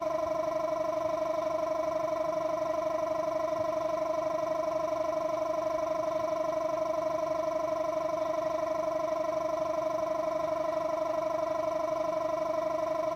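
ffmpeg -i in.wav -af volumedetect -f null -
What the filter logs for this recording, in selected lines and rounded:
mean_volume: -30.9 dB
max_volume: -19.9 dB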